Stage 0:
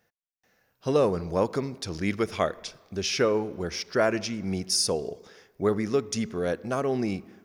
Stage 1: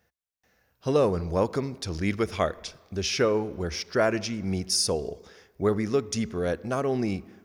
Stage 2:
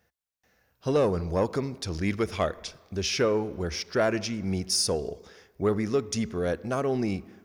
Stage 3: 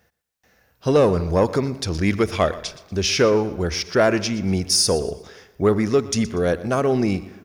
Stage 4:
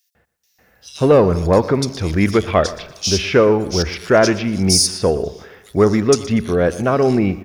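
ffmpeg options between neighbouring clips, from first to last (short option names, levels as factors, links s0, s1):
-af "equalizer=f=64:t=o:w=0.8:g=12.5"
-af "asoftclip=type=tanh:threshold=0.2"
-af "aecho=1:1:120|240|360:0.141|0.0452|0.0145,volume=2.37"
-filter_complex "[0:a]acrossover=split=3400[s0][s1];[s0]adelay=150[s2];[s2][s1]amix=inputs=2:normalize=0,volume=1.68"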